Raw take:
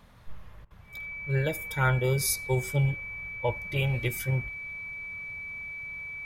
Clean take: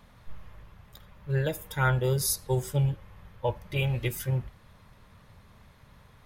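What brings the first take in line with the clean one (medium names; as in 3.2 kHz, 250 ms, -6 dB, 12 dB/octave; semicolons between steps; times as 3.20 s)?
band-stop 2.3 kHz, Q 30; interpolate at 0.65 s, 55 ms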